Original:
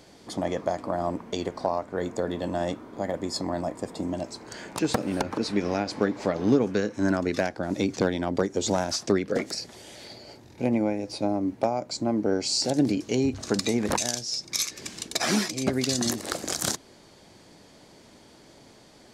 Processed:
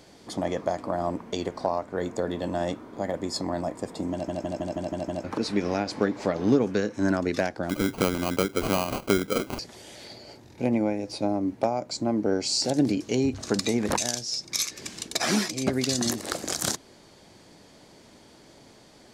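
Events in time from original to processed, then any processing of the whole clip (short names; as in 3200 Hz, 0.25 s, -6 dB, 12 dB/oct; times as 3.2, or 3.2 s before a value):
4.12 stutter in place 0.16 s, 7 plays
7.69–9.59 sample-rate reducer 1800 Hz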